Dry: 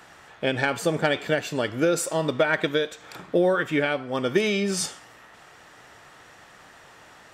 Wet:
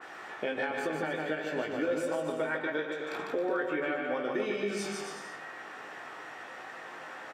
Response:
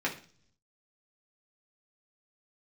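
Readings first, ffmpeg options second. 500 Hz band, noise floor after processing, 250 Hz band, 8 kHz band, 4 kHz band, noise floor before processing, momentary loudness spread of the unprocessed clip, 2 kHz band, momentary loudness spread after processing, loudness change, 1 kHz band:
-7.5 dB, -45 dBFS, -8.5 dB, -14.5 dB, -12.5 dB, -51 dBFS, 6 LU, -7.0 dB, 12 LU, -9.5 dB, -6.0 dB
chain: -filter_complex "[0:a]equalizer=f=11000:t=o:w=1.7:g=-5.5,asplit=2[s0][s1];[s1]adelay=19,volume=0.473[s2];[s0][s2]amix=inputs=2:normalize=0,asplit=2[s3][s4];[1:a]atrim=start_sample=2205[s5];[s4][s5]afir=irnorm=-1:irlink=0,volume=0.299[s6];[s3][s6]amix=inputs=2:normalize=0,acompressor=threshold=0.0251:ratio=2.5,highpass=250,aecho=1:1:150|270|366|442.8|504.2:0.631|0.398|0.251|0.158|0.1,alimiter=limit=0.0891:level=0:latency=1:release=348,adynamicequalizer=threshold=0.00316:dfrequency=2800:dqfactor=0.7:tfrequency=2800:tqfactor=0.7:attack=5:release=100:ratio=0.375:range=3.5:mode=cutabove:tftype=highshelf"

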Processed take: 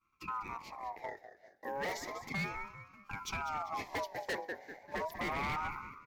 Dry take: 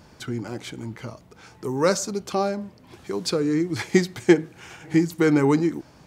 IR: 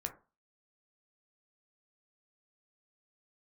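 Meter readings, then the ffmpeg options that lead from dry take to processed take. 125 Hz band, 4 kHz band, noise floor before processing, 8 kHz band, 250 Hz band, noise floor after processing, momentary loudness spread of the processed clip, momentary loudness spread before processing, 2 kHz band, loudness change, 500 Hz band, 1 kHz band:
-19.5 dB, -13.0 dB, -52 dBFS, -17.5 dB, -26.0 dB, -68 dBFS, 10 LU, 16 LU, -7.5 dB, -16.5 dB, -19.5 dB, -5.5 dB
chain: -filter_complex "[0:a]agate=range=0.0224:threshold=0.0126:ratio=3:detection=peak,aeval=exprs='0.158*(abs(mod(val(0)/0.158+3,4)-2)-1)':c=same,firequalizer=gain_entry='entry(140,0);entry(220,-11);entry(590,-20);entry(1200,9);entry(2200,-29);entry(3400,-8);entry(5700,-10);entry(8600,-29);entry(12000,-4)':delay=0.05:min_phase=1,asplit=2[s0][s1];[s1]asplit=4[s2][s3][s4][s5];[s2]adelay=196,afreqshift=-63,volume=0.237[s6];[s3]adelay=392,afreqshift=-126,volume=0.0923[s7];[s4]adelay=588,afreqshift=-189,volume=0.0359[s8];[s5]adelay=784,afreqshift=-252,volume=0.0141[s9];[s6][s7][s8][s9]amix=inputs=4:normalize=0[s10];[s0][s10]amix=inputs=2:normalize=0,asoftclip=type=hard:threshold=0.0398,aeval=exprs='val(0)*sin(2*PI*930*n/s+930*0.3/0.33*sin(2*PI*0.33*n/s))':c=same,volume=0.75"

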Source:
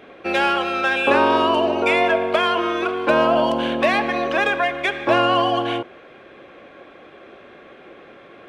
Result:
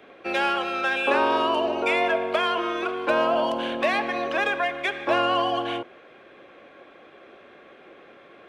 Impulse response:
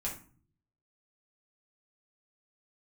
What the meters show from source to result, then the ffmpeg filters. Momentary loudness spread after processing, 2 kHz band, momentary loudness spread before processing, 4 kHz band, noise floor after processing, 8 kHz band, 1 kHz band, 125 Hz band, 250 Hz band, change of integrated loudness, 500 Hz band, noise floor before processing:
6 LU, -4.5 dB, 6 LU, -4.5 dB, -50 dBFS, no reading, -5.0 dB, -10.5 dB, -7.0 dB, -5.0 dB, -5.5 dB, -45 dBFS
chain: -filter_complex "[0:a]lowshelf=f=180:g=-6.5,acrossover=split=250|570|1900[s0][s1][s2][s3];[s0]asoftclip=type=hard:threshold=0.0178[s4];[s4][s1][s2][s3]amix=inputs=4:normalize=0,volume=0.596"

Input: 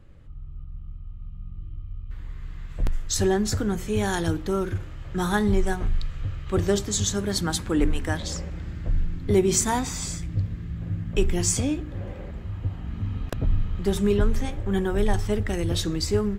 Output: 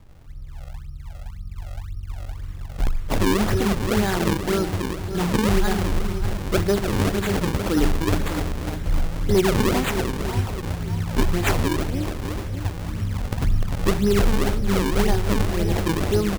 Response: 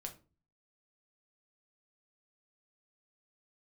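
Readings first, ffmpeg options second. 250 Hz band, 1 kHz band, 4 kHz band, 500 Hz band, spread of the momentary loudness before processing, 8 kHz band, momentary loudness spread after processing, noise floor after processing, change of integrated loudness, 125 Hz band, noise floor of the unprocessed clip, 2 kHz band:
+3.5 dB, +5.0 dB, +2.0 dB, +2.5 dB, 17 LU, -5.0 dB, 15 LU, -36 dBFS, +3.0 dB, +3.5 dB, -38 dBFS, +5.5 dB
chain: -af "aecho=1:1:300|600|900|1200|1500|1800|2100|2400:0.501|0.301|0.18|0.108|0.065|0.039|0.0234|0.014,acrusher=samples=38:mix=1:aa=0.000001:lfo=1:lforange=60.8:lforate=1.9,volume=4.73,asoftclip=hard,volume=0.211,volume=1.26"

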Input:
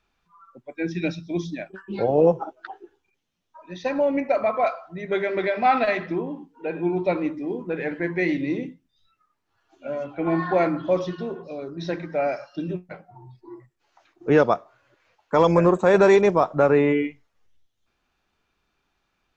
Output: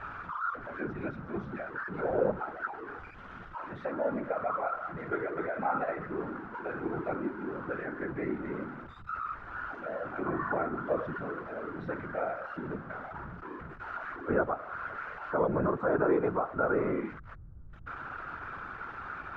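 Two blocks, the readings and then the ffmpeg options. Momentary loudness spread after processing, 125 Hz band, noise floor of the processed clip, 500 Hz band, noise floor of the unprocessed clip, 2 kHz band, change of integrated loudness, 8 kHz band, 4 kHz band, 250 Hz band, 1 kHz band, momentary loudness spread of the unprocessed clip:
13 LU, -10.5 dB, -47 dBFS, -11.0 dB, -74 dBFS, -6.5 dB, -11.5 dB, no reading, under -15 dB, -10.5 dB, -7.5 dB, 17 LU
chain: -filter_complex "[0:a]aeval=exprs='val(0)+0.5*0.0447*sgn(val(0))':c=same,acrossover=split=250|730[s0][s1][s2];[s2]alimiter=limit=0.075:level=0:latency=1:release=281[s3];[s0][s1][s3]amix=inputs=3:normalize=0,afftfilt=real='hypot(re,im)*cos(2*PI*random(0))':imag='hypot(re,im)*sin(2*PI*random(1))':win_size=512:overlap=0.75,lowpass=f=1400:t=q:w=5.8,volume=0.447"

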